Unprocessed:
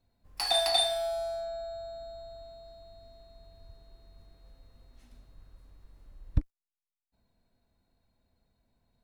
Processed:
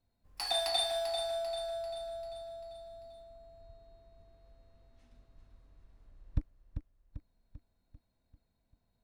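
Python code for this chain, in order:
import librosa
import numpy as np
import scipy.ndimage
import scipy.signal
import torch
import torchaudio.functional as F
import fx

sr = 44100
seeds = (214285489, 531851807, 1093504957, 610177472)

y = fx.air_absorb(x, sr, metres=53.0, at=(3.22, 6.37))
y = fx.echo_feedback(y, sr, ms=393, feedback_pct=51, wet_db=-8.0)
y = F.gain(torch.from_numpy(y), -5.5).numpy()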